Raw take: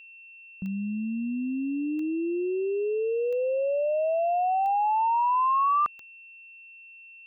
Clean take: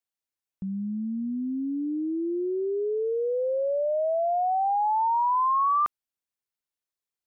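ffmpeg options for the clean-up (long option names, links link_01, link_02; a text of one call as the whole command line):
ffmpeg -i in.wav -af "adeclick=threshold=4,bandreject=frequency=2700:width=30" out.wav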